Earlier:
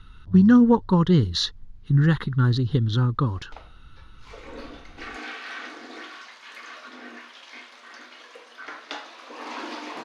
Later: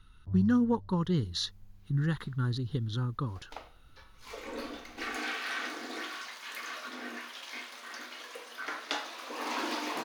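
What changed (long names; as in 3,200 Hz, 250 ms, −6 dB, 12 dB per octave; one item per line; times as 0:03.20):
speech −11.0 dB
master: remove high-frequency loss of the air 74 metres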